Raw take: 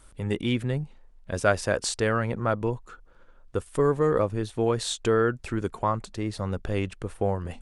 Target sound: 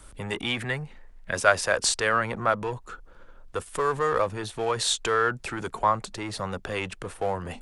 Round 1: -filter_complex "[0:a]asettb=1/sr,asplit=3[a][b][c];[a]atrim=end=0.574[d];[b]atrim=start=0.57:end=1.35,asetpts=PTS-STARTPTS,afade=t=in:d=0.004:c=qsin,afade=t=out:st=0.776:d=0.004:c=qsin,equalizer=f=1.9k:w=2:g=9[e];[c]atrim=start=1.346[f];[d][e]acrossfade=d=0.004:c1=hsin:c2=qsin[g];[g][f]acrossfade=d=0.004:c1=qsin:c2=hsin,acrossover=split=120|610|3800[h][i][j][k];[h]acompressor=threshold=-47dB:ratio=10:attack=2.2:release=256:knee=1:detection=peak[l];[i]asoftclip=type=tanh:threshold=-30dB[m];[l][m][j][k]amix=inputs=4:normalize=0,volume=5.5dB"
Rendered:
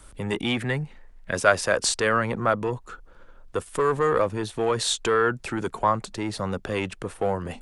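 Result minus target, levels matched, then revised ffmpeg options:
soft clip: distortion -5 dB
-filter_complex "[0:a]asettb=1/sr,asplit=3[a][b][c];[a]atrim=end=0.574[d];[b]atrim=start=0.57:end=1.35,asetpts=PTS-STARTPTS,afade=t=in:d=0.004:c=qsin,afade=t=out:st=0.776:d=0.004:c=qsin,equalizer=f=1.9k:w=2:g=9[e];[c]atrim=start=1.346[f];[d][e]acrossfade=d=0.004:c1=hsin:c2=qsin[g];[g][f]acrossfade=d=0.004:c1=qsin:c2=hsin,acrossover=split=120|610|3800[h][i][j][k];[h]acompressor=threshold=-47dB:ratio=10:attack=2.2:release=256:knee=1:detection=peak[l];[i]asoftclip=type=tanh:threshold=-40dB[m];[l][m][j][k]amix=inputs=4:normalize=0,volume=5.5dB"

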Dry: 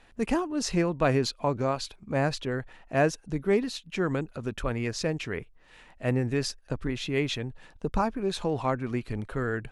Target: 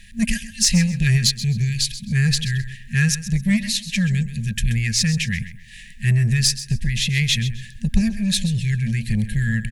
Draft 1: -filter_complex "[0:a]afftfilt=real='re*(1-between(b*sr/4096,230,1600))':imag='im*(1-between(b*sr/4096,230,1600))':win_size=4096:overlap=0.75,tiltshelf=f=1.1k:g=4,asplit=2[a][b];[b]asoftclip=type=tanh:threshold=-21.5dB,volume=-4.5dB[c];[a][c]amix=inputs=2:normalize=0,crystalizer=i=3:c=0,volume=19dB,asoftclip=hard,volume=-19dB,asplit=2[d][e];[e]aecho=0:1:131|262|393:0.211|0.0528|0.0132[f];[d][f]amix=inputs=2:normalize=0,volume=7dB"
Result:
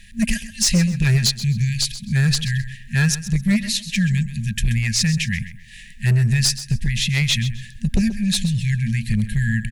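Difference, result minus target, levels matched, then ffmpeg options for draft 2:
overloaded stage: distortion +21 dB; soft clip: distortion -8 dB
-filter_complex "[0:a]afftfilt=real='re*(1-between(b*sr/4096,230,1600))':imag='im*(1-between(b*sr/4096,230,1600))':win_size=4096:overlap=0.75,tiltshelf=f=1.1k:g=4,asplit=2[a][b];[b]asoftclip=type=tanh:threshold=-29dB,volume=-4.5dB[c];[a][c]amix=inputs=2:normalize=0,crystalizer=i=3:c=0,volume=11.5dB,asoftclip=hard,volume=-11.5dB,asplit=2[d][e];[e]aecho=0:1:131|262|393:0.211|0.0528|0.0132[f];[d][f]amix=inputs=2:normalize=0,volume=7dB"

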